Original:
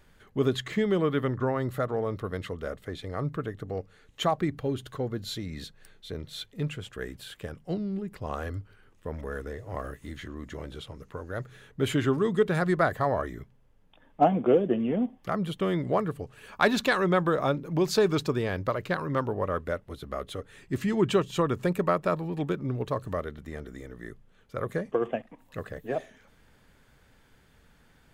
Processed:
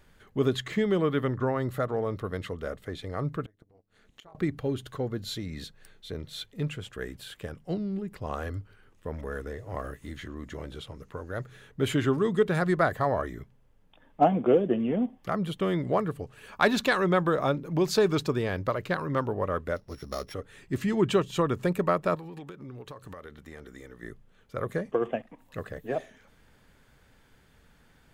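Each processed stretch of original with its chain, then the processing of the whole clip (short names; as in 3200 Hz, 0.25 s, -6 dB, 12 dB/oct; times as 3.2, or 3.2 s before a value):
3.45–4.35 flipped gate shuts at -29 dBFS, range -25 dB + AM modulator 210 Hz, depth 70%
19.76–20.34 sample sorter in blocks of 8 samples + high shelf 7200 Hz -8.5 dB
22.15–24.03 low shelf 360 Hz -7.5 dB + notch 640 Hz, Q 8.4 + compressor 16:1, threshold -38 dBFS
whole clip: dry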